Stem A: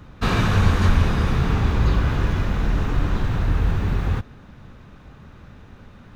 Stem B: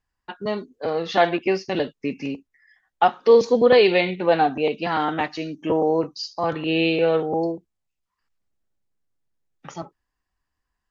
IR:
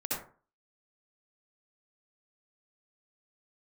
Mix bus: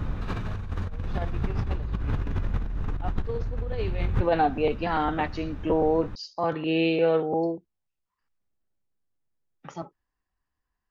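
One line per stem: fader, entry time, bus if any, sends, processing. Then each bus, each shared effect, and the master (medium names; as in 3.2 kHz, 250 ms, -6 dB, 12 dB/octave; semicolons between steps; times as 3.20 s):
+2.5 dB, 0.00 s, no send, bass shelf 72 Hz +10 dB; auto duck -7 dB, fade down 0.95 s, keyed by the second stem
-9.5 dB, 0.00 s, no send, none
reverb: none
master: treble shelf 2.8 kHz -7.5 dB; compressor with a negative ratio -26 dBFS, ratio -1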